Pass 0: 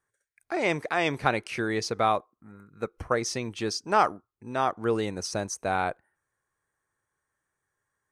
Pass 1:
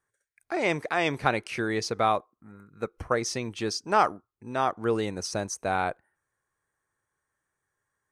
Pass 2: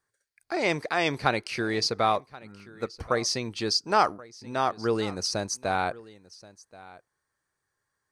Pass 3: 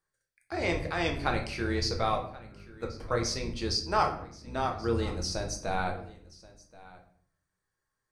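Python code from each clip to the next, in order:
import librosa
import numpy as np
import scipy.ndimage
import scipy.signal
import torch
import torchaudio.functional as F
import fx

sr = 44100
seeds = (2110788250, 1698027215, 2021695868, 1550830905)

y1 = x
y2 = fx.peak_eq(y1, sr, hz=4600.0, db=11.0, octaves=0.41)
y2 = y2 + 10.0 ** (-20.5 / 20.0) * np.pad(y2, (int(1079 * sr / 1000.0), 0))[:len(y2)]
y3 = fx.octave_divider(y2, sr, octaves=2, level_db=0.0)
y3 = fx.room_shoebox(y3, sr, seeds[0], volume_m3=87.0, walls='mixed', distance_m=0.61)
y3 = y3 * 10.0 ** (-6.5 / 20.0)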